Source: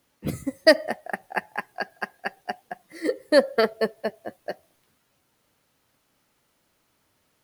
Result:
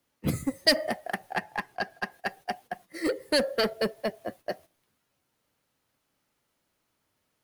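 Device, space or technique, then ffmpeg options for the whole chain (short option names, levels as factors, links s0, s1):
one-band saturation: -filter_complex "[0:a]agate=range=0.316:threshold=0.00447:ratio=16:detection=peak,acrossover=split=200|2500[s0][s1][s2];[s1]asoftclip=type=tanh:threshold=0.0531[s3];[s0][s3][s2]amix=inputs=3:normalize=0,asettb=1/sr,asplit=3[s4][s5][s6];[s4]atrim=end=1.334[s7];[s5]atrim=start=1.33:end=2.12,asetpts=PTS-STARTPTS,afade=t=in:d=0.004:c=qsin,afade=t=out:st=0.786:d=0.004:c=qsin,highshelf=f=8000:g=-7.5[s8];[s6]atrim=start=2.116[s9];[s7][s8]acrossfade=d=0.004:c1=hsin:c2=qsin[s10];[s10][s9]acrossfade=d=0.004:c1=qsin:c2=hsin,volume=1.33"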